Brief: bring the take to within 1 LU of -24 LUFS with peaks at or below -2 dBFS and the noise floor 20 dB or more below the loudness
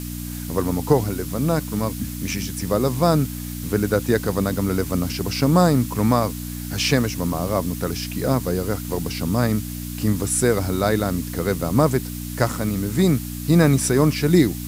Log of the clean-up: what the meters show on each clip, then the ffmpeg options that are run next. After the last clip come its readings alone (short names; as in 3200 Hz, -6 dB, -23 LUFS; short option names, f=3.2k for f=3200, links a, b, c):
hum 60 Hz; harmonics up to 300 Hz; hum level -29 dBFS; noise floor -31 dBFS; noise floor target -42 dBFS; loudness -21.5 LUFS; peak -2.0 dBFS; loudness target -24.0 LUFS
-> -af "bandreject=f=60:t=h:w=4,bandreject=f=120:t=h:w=4,bandreject=f=180:t=h:w=4,bandreject=f=240:t=h:w=4,bandreject=f=300:t=h:w=4"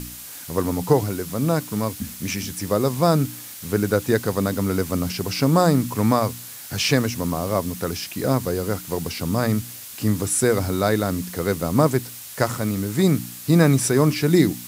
hum none; noise floor -38 dBFS; noise floor target -42 dBFS
-> -af "afftdn=nr=6:nf=-38"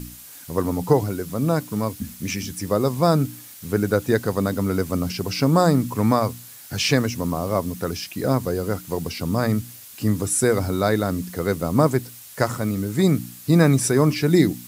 noise floor -42 dBFS; loudness -22.0 LUFS; peak -3.0 dBFS; loudness target -24.0 LUFS
-> -af "volume=-2dB"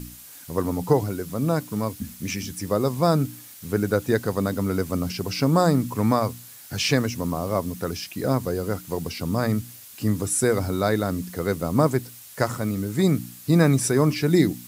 loudness -24.0 LUFS; peak -5.0 dBFS; noise floor -44 dBFS